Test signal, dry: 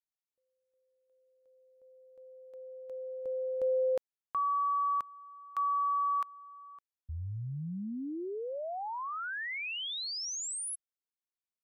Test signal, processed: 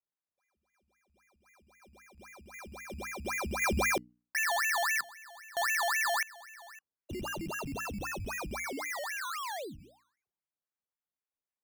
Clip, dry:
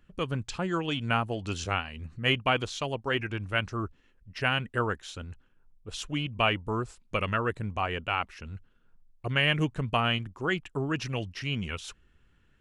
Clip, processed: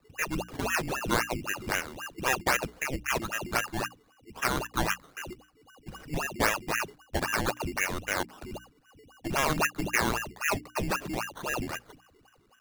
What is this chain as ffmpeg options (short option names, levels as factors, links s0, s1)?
-af "lowpass=f=2500:t=q:w=0.5098,lowpass=f=2500:t=q:w=0.6013,lowpass=f=2500:t=q:w=0.9,lowpass=f=2500:t=q:w=2.563,afreqshift=-2900,acrusher=samples=14:mix=1:aa=0.000001:lfo=1:lforange=8.4:lforate=3.8,bandreject=f=60:t=h:w=6,bandreject=f=120:t=h:w=6,bandreject=f=180:t=h:w=6,bandreject=f=240:t=h:w=6,bandreject=f=300:t=h:w=6"